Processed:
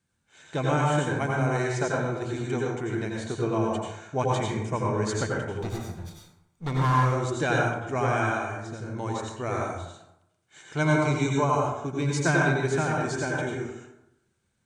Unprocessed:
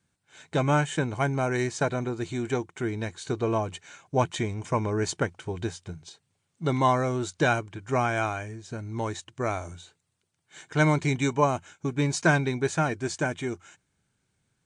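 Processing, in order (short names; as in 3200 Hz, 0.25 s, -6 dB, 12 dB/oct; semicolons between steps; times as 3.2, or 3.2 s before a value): 5.6–7.03 minimum comb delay 0.87 ms; 10.65–12.16 notch 1800 Hz, Q 8.6; plate-style reverb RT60 0.84 s, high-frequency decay 0.5×, pre-delay 75 ms, DRR -2.5 dB; gain -4 dB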